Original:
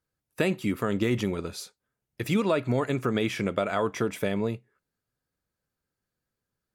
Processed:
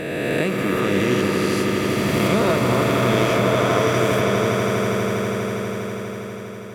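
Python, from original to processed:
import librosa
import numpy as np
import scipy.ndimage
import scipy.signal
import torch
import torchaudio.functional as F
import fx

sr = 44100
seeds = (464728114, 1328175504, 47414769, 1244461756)

y = fx.spec_swells(x, sr, rise_s=2.49)
y = fx.echo_swell(y, sr, ms=81, loudest=8, wet_db=-9.0)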